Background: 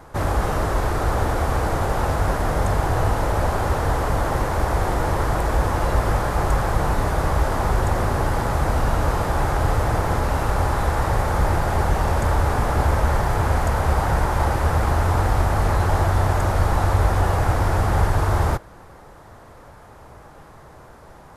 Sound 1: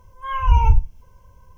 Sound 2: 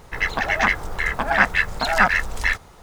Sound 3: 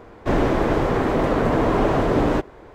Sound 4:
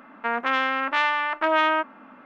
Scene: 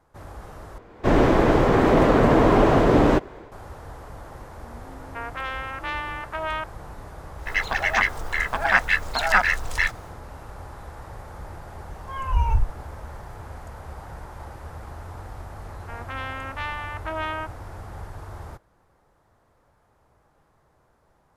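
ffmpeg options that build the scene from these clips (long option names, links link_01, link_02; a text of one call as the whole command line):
ffmpeg -i bed.wav -i cue0.wav -i cue1.wav -i cue2.wav -i cue3.wav -filter_complex "[4:a]asplit=2[link_01][link_02];[0:a]volume=-19dB[link_03];[3:a]dynaudnorm=framelen=100:gausssize=5:maxgain=11.5dB[link_04];[link_01]acrossover=split=320[link_05][link_06];[link_06]adelay=520[link_07];[link_05][link_07]amix=inputs=2:normalize=0[link_08];[2:a]equalizer=frequency=170:width=0.52:gain=-9.5[link_09];[link_02]dynaudnorm=framelen=180:gausssize=5:maxgain=11.5dB[link_10];[link_03]asplit=2[link_11][link_12];[link_11]atrim=end=0.784[link_13];[link_04]atrim=end=2.74,asetpts=PTS-STARTPTS,volume=-4dB[link_14];[link_12]atrim=start=3.516[link_15];[link_08]atrim=end=2.25,asetpts=PTS-STARTPTS,volume=-8dB,afade=type=in:duration=0.004:curve=hsin,afade=type=out:start_time=2.246:duration=0.004:curve=hsin,adelay=4390[link_16];[link_09]atrim=end=2.82,asetpts=PTS-STARTPTS,volume=-1dB,afade=type=in:duration=0.1,afade=type=out:start_time=2.72:duration=0.1,adelay=7340[link_17];[1:a]atrim=end=1.57,asetpts=PTS-STARTPTS,volume=-6.5dB,afade=type=in:duration=0.004:curve=hsin,afade=type=out:start_time=1.566:duration=0.004:curve=hsin,adelay=11850[link_18];[link_10]atrim=end=2.25,asetpts=PTS-STARTPTS,volume=-16dB,afade=type=in:duration=0.004:curve=hsin,afade=type=out:start_time=2.246:duration=0.004:curve=hsin,adelay=15640[link_19];[link_13][link_14]acrossfade=duration=0.004:curve1=hsin:curve2=hsin[link_20];[link_20][link_15]acrossfade=duration=0.004:curve1=hsin:curve2=hsin[link_21];[link_21][link_16][link_17][link_18][link_19]amix=inputs=5:normalize=0" out.wav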